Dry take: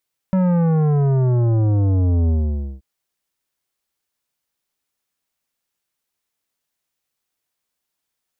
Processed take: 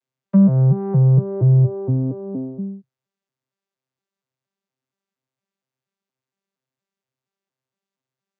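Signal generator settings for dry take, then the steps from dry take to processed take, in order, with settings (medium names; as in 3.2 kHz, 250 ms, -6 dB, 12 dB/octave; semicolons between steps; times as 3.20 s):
sub drop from 190 Hz, over 2.48 s, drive 12 dB, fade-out 0.52 s, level -15 dB
vocoder on a broken chord bare fifth, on C3, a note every 234 ms; low-pass that closes with the level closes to 1.2 kHz, closed at -13.5 dBFS; in parallel at +0.5 dB: compression, threshold -25 dBFS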